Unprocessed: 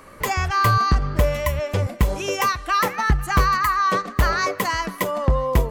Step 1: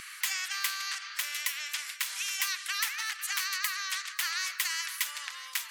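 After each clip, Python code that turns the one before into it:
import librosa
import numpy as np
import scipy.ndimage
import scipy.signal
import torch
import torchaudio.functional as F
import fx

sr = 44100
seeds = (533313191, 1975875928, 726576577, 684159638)

y = scipy.signal.sosfilt(scipy.signal.butter(6, 1700.0, 'highpass', fs=sr, output='sos'), x)
y = fx.high_shelf(y, sr, hz=11000.0, db=-9.0)
y = fx.spectral_comp(y, sr, ratio=2.0)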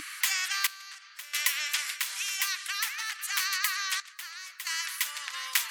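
y = fx.peak_eq(x, sr, hz=300.0, db=14.5, octaves=0.45)
y = fx.tremolo_random(y, sr, seeds[0], hz=1.5, depth_pct=85)
y = y * 10.0 ** (6.5 / 20.0)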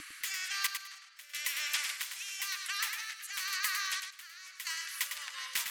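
y = 10.0 ** (-15.0 / 20.0) * np.tanh(x / 10.0 ** (-15.0 / 20.0))
y = fx.rotary_switch(y, sr, hz=1.0, then_hz=5.5, switch_at_s=4.41)
y = fx.echo_feedback(y, sr, ms=104, feedback_pct=19, wet_db=-7)
y = y * 10.0 ** (-3.0 / 20.0)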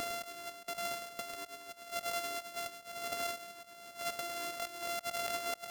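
y = np.r_[np.sort(x[:len(x) // 64 * 64].reshape(-1, 64), axis=1).ravel(), x[len(x) // 64 * 64:]]
y = fx.over_compress(y, sr, threshold_db=-44.0, ratio=-0.5)
y = y * 10.0 ** (3.5 / 20.0)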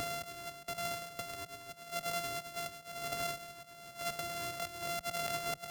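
y = fx.octave_divider(x, sr, octaves=2, level_db=2.0)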